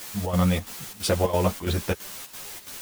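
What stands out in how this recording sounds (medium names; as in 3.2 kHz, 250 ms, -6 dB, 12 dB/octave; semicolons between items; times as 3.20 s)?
a quantiser's noise floor 6-bit, dither triangular; chopped level 3 Hz, depth 65%, duty 75%; a shimmering, thickened sound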